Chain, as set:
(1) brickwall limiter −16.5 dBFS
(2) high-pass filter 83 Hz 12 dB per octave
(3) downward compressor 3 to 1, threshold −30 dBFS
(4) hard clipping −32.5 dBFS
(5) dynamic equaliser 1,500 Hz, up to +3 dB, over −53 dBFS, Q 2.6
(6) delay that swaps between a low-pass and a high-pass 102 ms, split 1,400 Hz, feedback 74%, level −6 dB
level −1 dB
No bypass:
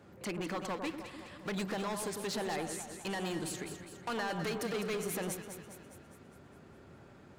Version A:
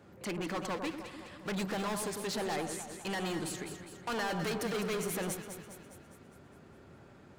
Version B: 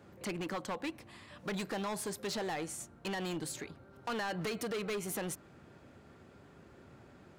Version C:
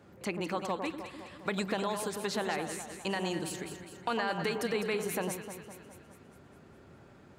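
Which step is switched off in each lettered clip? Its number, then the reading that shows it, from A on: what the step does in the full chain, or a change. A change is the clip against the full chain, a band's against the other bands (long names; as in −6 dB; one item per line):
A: 3, average gain reduction 2.0 dB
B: 6, change in crest factor −3.0 dB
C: 4, distortion level −8 dB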